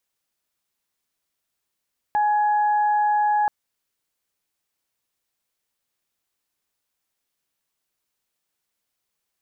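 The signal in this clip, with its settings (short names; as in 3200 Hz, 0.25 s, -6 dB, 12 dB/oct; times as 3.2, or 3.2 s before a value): steady additive tone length 1.33 s, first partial 838 Hz, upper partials -14 dB, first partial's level -17 dB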